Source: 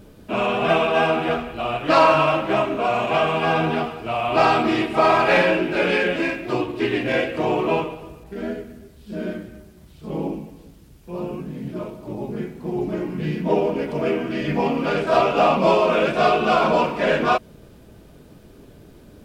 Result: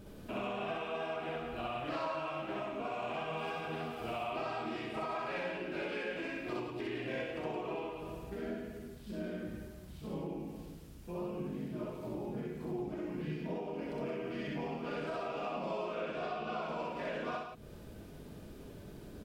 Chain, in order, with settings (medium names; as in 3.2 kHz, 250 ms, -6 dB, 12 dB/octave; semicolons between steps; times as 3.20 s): 3.37–4.24 s: treble shelf 5.5 kHz +8.5 dB; compression 12:1, threshold -32 dBFS, peak gain reduction 21 dB; 15.94–16.62 s: distance through air 54 m; loudspeakers at several distances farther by 22 m 0 dB, 59 m -6 dB; trim -7 dB